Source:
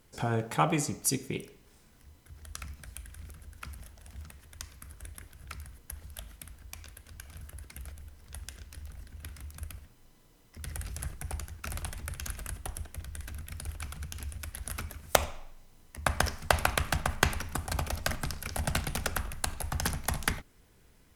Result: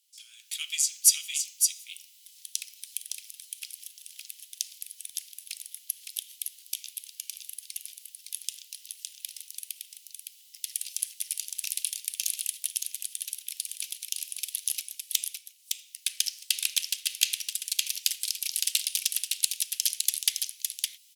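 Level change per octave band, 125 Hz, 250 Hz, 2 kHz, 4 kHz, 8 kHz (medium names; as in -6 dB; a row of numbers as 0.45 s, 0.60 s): under -40 dB, under -40 dB, -5.5 dB, +9.5 dB, +11.0 dB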